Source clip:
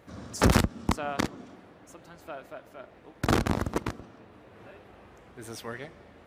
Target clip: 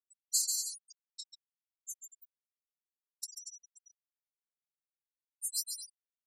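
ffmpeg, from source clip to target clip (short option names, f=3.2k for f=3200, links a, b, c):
-af "afftfilt=real='real(if(between(b,1,1012),(2*floor((b-1)/92)+1)*92-b,b),0)':imag='imag(if(between(b,1,1012),(2*floor((b-1)/92)+1)*92-b,b),0)*if(between(b,1,1012),-1,1)':win_size=2048:overlap=0.75,acompressor=threshold=-40dB:ratio=5,crystalizer=i=10:c=0,flanger=delay=17:depth=6.1:speed=0.32,afftfilt=real='hypot(re,im)*cos(PI*b)':imag='0':win_size=512:overlap=0.75,afftfilt=real='re*(1-between(b*sr/4096,190,3800))':imag='im*(1-between(b*sr/4096,190,3800))':win_size=4096:overlap=0.75,highpass=150,equalizer=f=660:w=1:g=3.5,aecho=1:1:140|238|306.6|354.6|388.2:0.631|0.398|0.251|0.158|0.1,afftfilt=real='re*gte(hypot(re,im),0.0316)':imag='im*gte(hypot(re,im),0.0316)':win_size=1024:overlap=0.75,volume=2.5dB"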